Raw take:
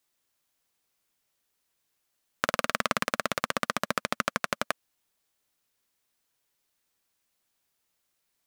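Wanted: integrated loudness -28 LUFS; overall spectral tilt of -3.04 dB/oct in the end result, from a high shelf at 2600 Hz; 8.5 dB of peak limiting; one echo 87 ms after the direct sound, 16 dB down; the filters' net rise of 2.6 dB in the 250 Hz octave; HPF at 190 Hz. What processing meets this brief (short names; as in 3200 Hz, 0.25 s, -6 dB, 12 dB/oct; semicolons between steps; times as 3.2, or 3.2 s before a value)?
HPF 190 Hz; bell 250 Hz +5 dB; high shelf 2600 Hz +4 dB; limiter -9.5 dBFS; echo 87 ms -16 dB; gain +7.5 dB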